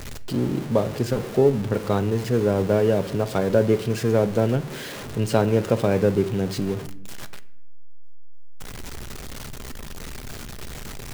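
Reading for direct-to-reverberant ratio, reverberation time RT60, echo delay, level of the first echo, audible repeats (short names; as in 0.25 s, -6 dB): 11.0 dB, 0.80 s, none, none, none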